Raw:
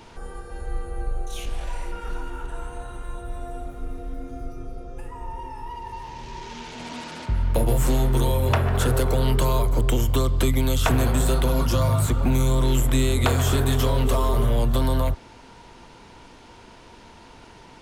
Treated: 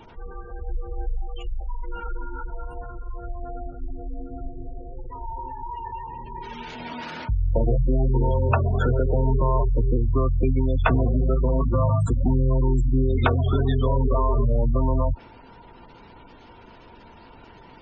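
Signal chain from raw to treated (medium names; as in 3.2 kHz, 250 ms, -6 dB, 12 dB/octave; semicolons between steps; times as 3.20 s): spectral gate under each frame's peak -20 dB strong; dynamic bell 1.6 kHz, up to +5 dB, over -45 dBFS, Q 0.83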